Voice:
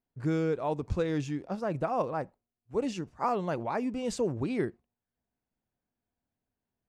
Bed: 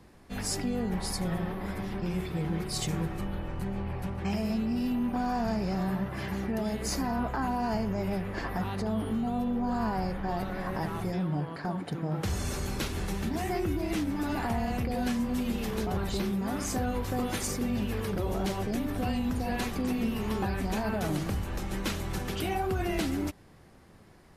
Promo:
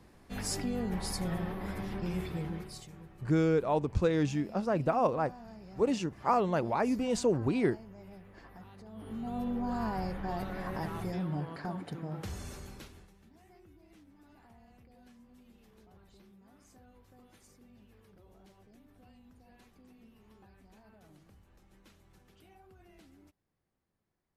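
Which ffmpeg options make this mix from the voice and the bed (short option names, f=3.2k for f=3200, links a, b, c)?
-filter_complex "[0:a]adelay=3050,volume=2dB[a];[1:a]volume=12.5dB,afade=t=out:st=2.27:d=0.58:silence=0.149624,afade=t=in:st=8.92:d=0.55:silence=0.16788,afade=t=out:st=11.56:d=1.55:silence=0.0562341[b];[a][b]amix=inputs=2:normalize=0"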